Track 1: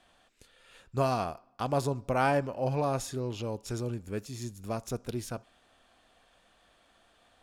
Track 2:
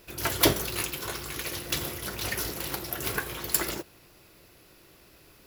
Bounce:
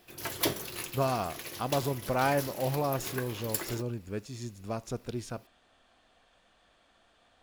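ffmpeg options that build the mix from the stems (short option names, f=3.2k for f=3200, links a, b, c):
-filter_complex "[0:a]lowpass=8.2k,volume=-1dB[a];[1:a]highpass=100,bandreject=f=1.4k:w=15,volume=-7.5dB[b];[a][b]amix=inputs=2:normalize=0"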